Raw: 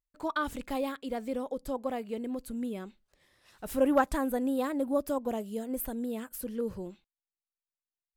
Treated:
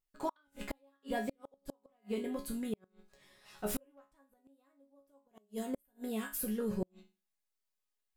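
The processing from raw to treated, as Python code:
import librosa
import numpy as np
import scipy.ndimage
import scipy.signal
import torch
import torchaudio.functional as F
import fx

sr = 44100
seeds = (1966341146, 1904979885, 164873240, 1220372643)

y = fx.resonator_bank(x, sr, root=49, chord='sus4', decay_s=0.31)
y = fx.gate_flip(y, sr, shuts_db=-42.0, range_db=-41)
y = y * 10.0 ** (18.0 / 20.0)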